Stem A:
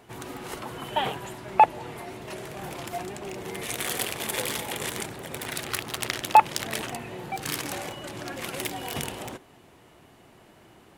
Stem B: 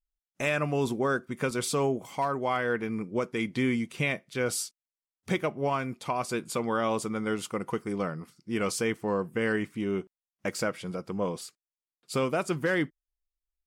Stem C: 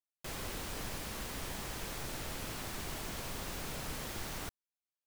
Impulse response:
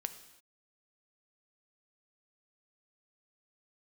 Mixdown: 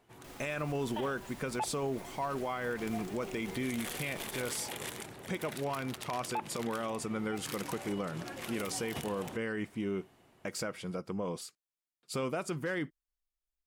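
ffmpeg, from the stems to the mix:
-filter_complex "[0:a]dynaudnorm=f=280:g=9:m=2.51,volume=0.2[s0];[1:a]volume=0.708[s1];[2:a]alimiter=level_in=5.96:limit=0.0631:level=0:latency=1:release=169,volume=0.168,volume=0.668[s2];[s0][s1][s2]amix=inputs=3:normalize=0,alimiter=level_in=1.26:limit=0.0631:level=0:latency=1:release=61,volume=0.794"

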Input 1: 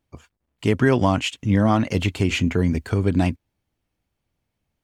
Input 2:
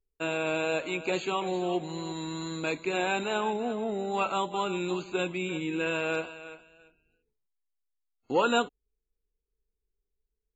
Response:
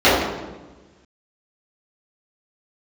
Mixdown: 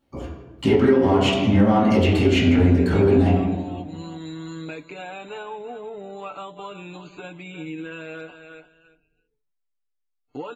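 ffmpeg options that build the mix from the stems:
-filter_complex "[0:a]asoftclip=type=tanh:threshold=0.282,acompressor=threshold=0.0631:ratio=2.5,volume=1,asplit=2[s0][s1];[s1]volume=0.133[s2];[1:a]lowpass=f=3600:p=1,acompressor=threshold=0.0224:ratio=8,aecho=1:1:6.8:0.77,adelay=2050,volume=1[s3];[2:a]atrim=start_sample=2205[s4];[s2][s4]afir=irnorm=-1:irlink=0[s5];[s0][s3][s5]amix=inputs=3:normalize=0,alimiter=limit=0.447:level=0:latency=1:release=422"

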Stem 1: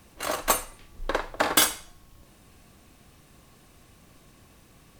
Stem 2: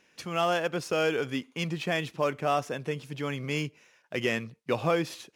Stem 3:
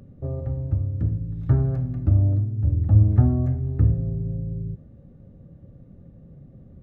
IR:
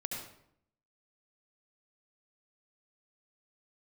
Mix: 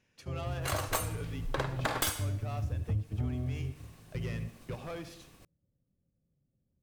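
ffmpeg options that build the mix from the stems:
-filter_complex "[0:a]agate=range=0.0224:threshold=0.00316:ratio=3:detection=peak,aeval=exprs='clip(val(0),-1,0.0944)':c=same,adelay=450,volume=1,asplit=2[s0][s1];[s1]volume=0.119[s2];[1:a]asoftclip=type=tanh:threshold=0.0596,volume=0.211,asplit=3[s3][s4][s5];[s4]volume=0.355[s6];[2:a]volume=0.398[s7];[s5]apad=whole_len=300806[s8];[s7][s8]sidechaingate=range=0.0631:threshold=0.00282:ratio=16:detection=peak[s9];[3:a]atrim=start_sample=2205[s10];[s2][s6]amix=inputs=2:normalize=0[s11];[s11][s10]afir=irnorm=-1:irlink=0[s12];[s0][s3][s9][s12]amix=inputs=4:normalize=0,acompressor=threshold=0.0282:ratio=3"

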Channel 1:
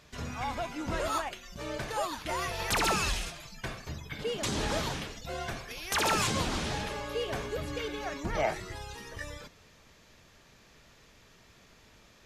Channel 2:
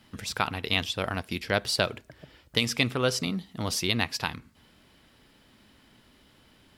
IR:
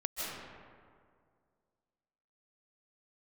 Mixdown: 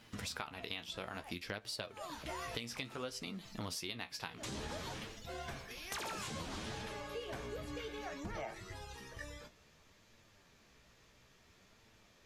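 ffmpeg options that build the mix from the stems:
-filter_complex "[0:a]volume=0.708[s0];[1:a]lowshelf=f=170:g=-7,volume=1.12,asplit=2[s1][s2];[s2]apad=whole_len=540266[s3];[s0][s3]sidechaincompress=threshold=0.0126:ratio=8:attack=6.9:release=123[s4];[s4][s1]amix=inputs=2:normalize=0,flanger=delay=8.8:depth=8.6:regen=43:speed=0.59:shape=sinusoidal,acompressor=threshold=0.0112:ratio=10"

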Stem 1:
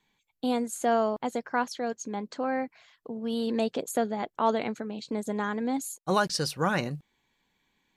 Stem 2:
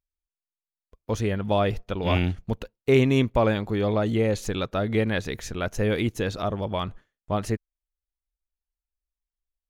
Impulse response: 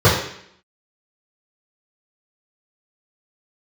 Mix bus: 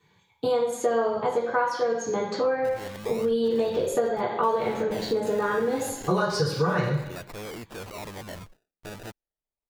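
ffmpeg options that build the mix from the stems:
-filter_complex "[0:a]volume=1.06,asplit=2[s0][s1];[s1]volume=0.211[s2];[1:a]alimiter=limit=0.133:level=0:latency=1,acrusher=samples=28:mix=1:aa=0.000001:lfo=1:lforange=28:lforate=0.31,asoftclip=type=hard:threshold=0.0282,adelay=1550,volume=0.841[s3];[2:a]atrim=start_sample=2205[s4];[s2][s4]afir=irnorm=-1:irlink=0[s5];[s0][s3][s5]amix=inputs=3:normalize=0,lowshelf=f=380:g=-7,acompressor=threshold=0.0708:ratio=4"

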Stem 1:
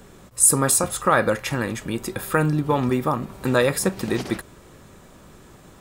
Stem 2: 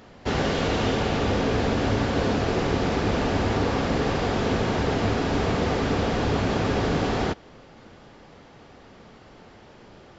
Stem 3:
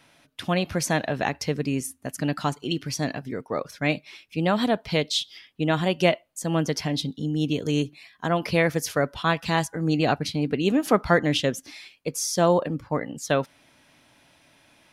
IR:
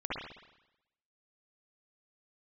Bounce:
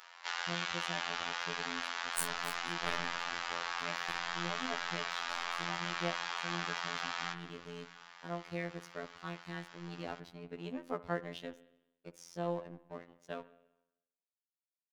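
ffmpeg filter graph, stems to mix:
-filter_complex "[0:a]aeval=exprs='0.596*(cos(1*acos(clip(val(0)/0.596,-1,1)))-cos(1*PI/2))+0.0376*(cos(2*acos(clip(val(0)/0.596,-1,1)))-cos(2*PI/2))+0.266*(cos(3*acos(clip(val(0)/0.596,-1,1)))-cos(3*PI/2))+0.0376*(cos(5*acos(clip(val(0)/0.596,-1,1)))-cos(5*PI/2))+0.0075*(cos(7*acos(clip(val(0)/0.596,-1,1)))-cos(7*PI/2))':c=same,adelay=1750,volume=0.168,asplit=2[s0][s1];[s1]volume=0.631[s2];[1:a]highpass=f=1000:w=0.5412,highpass=f=1000:w=1.3066,acompressor=threshold=0.0112:ratio=2.5,volume=1.26,asplit=2[s3][s4];[s4]volume=0.224[s5];[2:a]aeval=exprs='sgn(val(0))*max(abs(val(0))-0.0211,0)':c=same,highshelf=f=6100:g=-11.5,volume=0.178,asplit=2[s6][s7];[s7]volume=0.1[s8];[3:a]atrim=start_sample=2205[s9];[s2][s5][s8]amix=inputs=3:normalize=0[s10];[s10][s9]afir=irnorm=-1:irlink=0[s11];[s0][s3][s6][s11]amix=inputs=4:normalize=0,afftfilt=real='hypot(re,im)*cos(PI*b)':imag='0':win_size=2048:overlap=0.75"

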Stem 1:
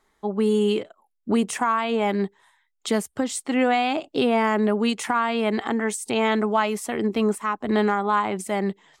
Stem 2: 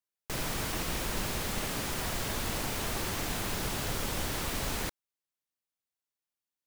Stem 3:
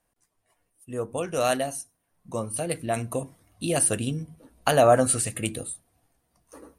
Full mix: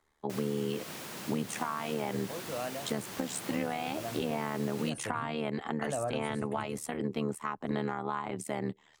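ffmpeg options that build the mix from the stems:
-filter_complex "[0:a]tremolo=f=75:d=0.889,volume=0.668[s0];[1:a]highpass=f=130:w=0.5412,highpass=f=130:w=1.3066,volume=0.422[s1];[2:a]lowpass=f=2300:p=1,adelay=1150,volume=0.251[s2];[s0][s1][s2]amix=inputs=3:normalize=0,acrossover=split=140[s3][s4];[s4]acompressor=threshold=0.0316:ratio=6[s5];[s3][s5]amix=inputs=2:normalize=0"

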